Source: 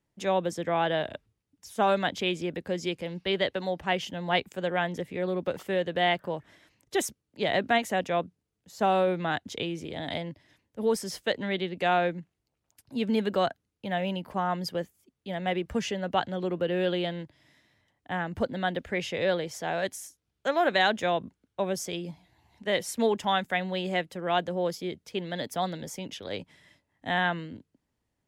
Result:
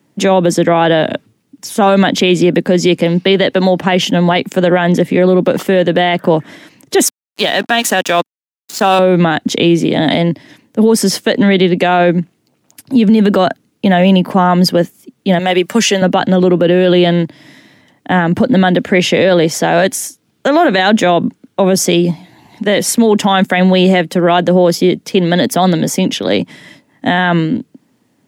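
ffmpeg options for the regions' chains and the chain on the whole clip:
-filter_complex "[0:a]asettb=1/sr,asplit=3[a][b][c];[a]atrim=end=7.064[d];[b]atrim=start=7.06:end=8.99,asetpts=PTS-STARTPTS,afade=t=in:d=0.004:c=qsin,afade=t=out:st=1.926:d=0.004:c=qsin,tiltshelf=f=710:g=-8,bandreject=f=2.1k:w=5.9,aeval=exprs='sgn(val(0))*max(abs(val(0))-0.00708,0)':c=same[e];[c]atrim=start=8.986[f];[d][e]acrossfade=d=0.004:c1=hsin:c2=qsin[g];[g][f]acrossfade=d=0.004:c1=qsin:c2=hsin,asettb=1/sr,asplit=3[h][i][j];[h]atrim=end=15.394[k];[i]atrim=start=15.39:end=16.02,asetpts=PTS-STARTPTS,afade=t=in:d=0.004:c=qsin,afade=t=out:st=0.626:d=0.004:c=qsin,highpass=f=690:p=1,highshelf=f=5.1k:g=8.5,aecho=1:1:5.2:0.31,atrim=end_sample=27783[l];[j]atrim=start=16.016[m];[k][l]acrossfade=d=0.004:c1=hsin:c2=qsin[n];[n][m]acrossfade=d=0.004:c1=qsin:c2=hsin,highpass=f=120:w=0.5412,highpass=f=120:w=1.3066,equalizer=f=250:w=1.4:g=8,alimiter=level_in=22dB:limit=-1dB:release=50:level=0:latency=1,volume=-1dB"

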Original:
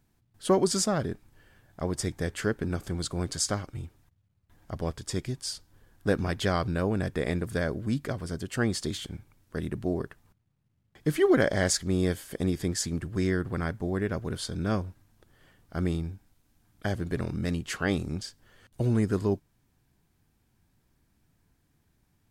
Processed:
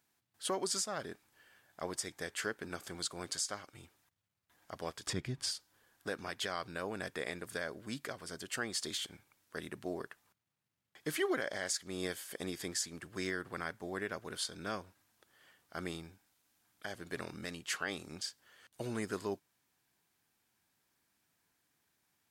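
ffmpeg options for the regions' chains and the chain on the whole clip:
-filter_complex "[0:a]asettb=1/sr,asplit=3[a][b][c];[a]atrim=end=5.074[d];[b]atrim=start=5.07:end=5.51,asetpts=PTS-STARTPTS,afade=t=in:d=0.004:c=qsin,afade=t=out:st=0.436:d=0.004:c=qsin,bass=f=250:g=14,treble=f=4k:g=-11,acompressor=mode=upward:threshold=-22dB:ratio=2.5:attack=3.2:release=140:knee=2.83:detection=peak[e];[c]atrim=start=5.506[f];[d][e]acrossfade=d=0.004:c1=hsin:c2=qsin[g];[g][f]acrossfade=d=0.004:c1=qsin:c2=hsin,highpass=f=1.1k:p=1,alimiter=limit=-24dB:level=0:latency=1:release=310"

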